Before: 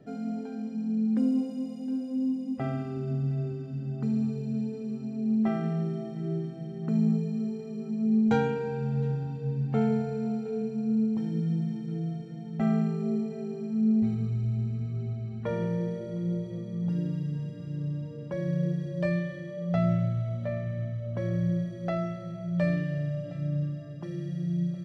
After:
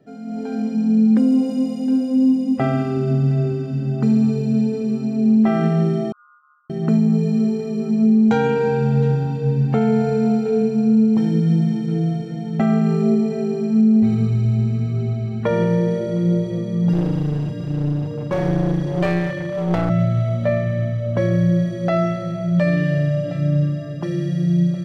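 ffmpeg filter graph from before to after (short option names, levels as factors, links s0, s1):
-filter_complex "[0:a]asettb=1/sr,asplit=3[s0][s1][s2];[s0]atrim=end=6.124[s3];[s1]atrim=start=6.12:end=6.7,asetpts=PTS-STARTPTS,afade=t=in:d=0.004:c=qsin,afade=t=out:st=0.576:d=0.004:c=qsin,asuperpass=centerf=1300:order=20:qfactor=3.6,aeval=exprs='val(0)*sin(2*PI*110*n/s)':c=same[s4];[s2]atrim=start=6.696[s5];[s3][s4]acrossfade=d=0.004:c1=hsin:c2=qsin[s6];[s6][s5]acrossfade=d=0.004:c1=qsin:c2=hsin,asettb=1/sr,asplit=3[s7][s8][s9];[s7]atrim=end=16.934[s10];[s8]atrim=start=16.93:end=19.9,asetpts=PTS-STARTPTS,afade=t=in:d=0.004:c=qsin,afade=t=out:st=2.966:d=0.004:c=qsin,equalizer=f=100:t=o:w=0.34:g=12,aeval=exprs='clip(val(0),-1,0.0178)':c=same[s11];[s9]atrim=start=19.896[s12];[s10][s11]acrossfade=d=0.004:c1=hsin:c2=qsin[s13];[s13][s12]acrossfade=d=0.004:c1=qsin:c2=hsin,lowshelf=f=120:g=-7.5,alimiter=limit=0.0668:level=0:latency=1:release=124,dynaudnorm=f=270:g=3:m=5.31"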